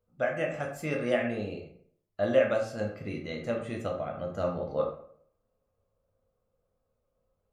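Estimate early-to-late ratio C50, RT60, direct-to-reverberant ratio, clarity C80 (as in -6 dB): 6.5 dB, 0.60 s, 0.0 dB, 10.5 dB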